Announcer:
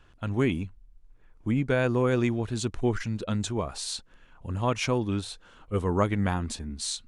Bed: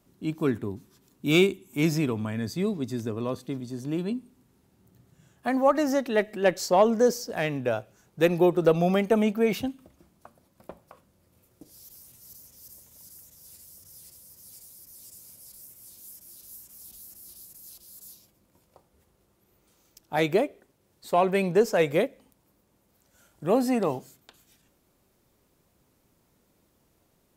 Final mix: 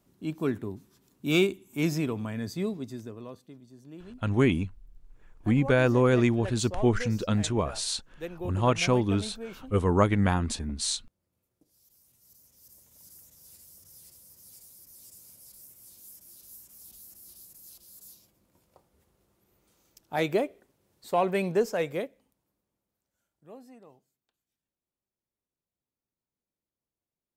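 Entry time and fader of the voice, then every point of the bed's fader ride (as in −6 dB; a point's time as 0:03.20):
4.00 s, +2.5 dB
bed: 0:02.63 −3 dB
0:03.56 −16.5 dB
0:11.65 −16.5 dB
0:13.11 −3 dB
0:21.50 −3 dB
0:23.78 −27.5 dB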